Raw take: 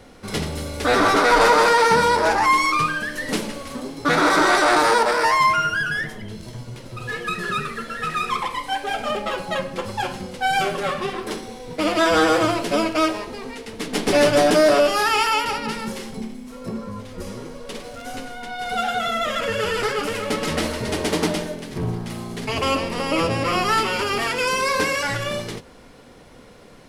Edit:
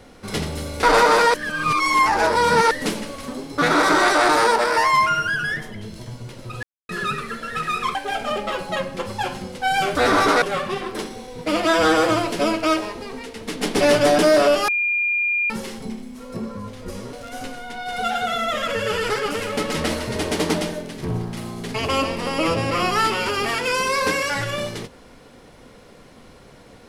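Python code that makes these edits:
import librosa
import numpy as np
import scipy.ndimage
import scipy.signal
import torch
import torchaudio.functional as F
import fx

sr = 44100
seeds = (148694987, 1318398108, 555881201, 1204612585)

y = fx.edit(x, sr, fx.move(start_s=0.83, length_s=0.47, to_s=10.74),
    fx.reverse_span(start_s=1.81, length_s=1.37),
    fx.silence(start_s=7.1, length_s=0.26),
    fx.cut(start_s=8.42, length_s=0.32),
    fx.bleep(start_s=15.0, length_s=0.82, hz=2410.0, db=-18.0),
    fx.cut(start_s=17.45, length_s=0.41), tone=tone)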